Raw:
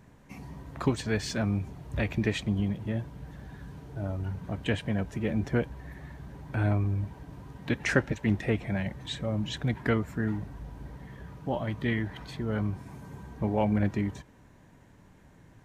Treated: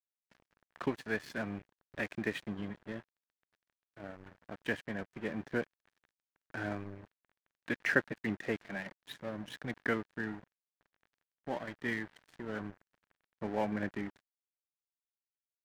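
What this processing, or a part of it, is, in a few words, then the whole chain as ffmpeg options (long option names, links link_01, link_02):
pocket radio on a weak battery: -filter_complex "[0:a]asplit=3[link_01][link_02][link_03];[link_01]afade=type=out:start_time=8.57:duration=0.02[link_04];[link_02]highpass=frequency=150:width=0.5412,highpass=frequency=150:width=1.3066,afade=type=in:start_time=8.57:duration=0.02,afade=type=out:start_time=9.08:duration=0.02[link_05];[link_03]afade=type=in:start_time=9.08:duration=0.02[link_06];[link_04][link_05][link_06]amix=inputs=3:normalize=0,highpass=260,lowpass=4100,lowshelf=frequency=190:gain=5.5,aeval=exprs='sgn(val(0))*max(abs(val(0))-0.00891,0)':channel_layout=same,equalizer=frequency=1700:width_type=o:width=0.5:gain=7,volume=-5dB"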